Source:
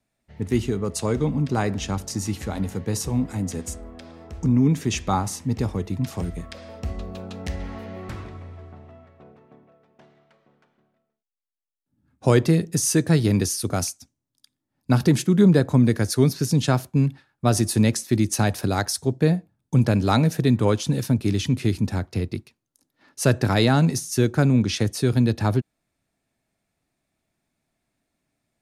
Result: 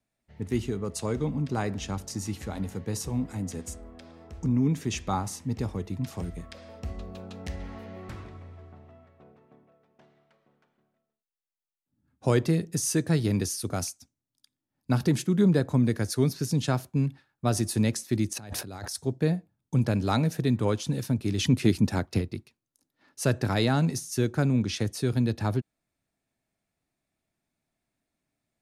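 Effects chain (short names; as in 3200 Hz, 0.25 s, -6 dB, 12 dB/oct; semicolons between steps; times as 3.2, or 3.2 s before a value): 18.33–18.95 negative-ratio compressor -32 dBFS, ratio -1; 21.38–22.22 harmonic-percussive split percussive +8 dB; gain -6 dB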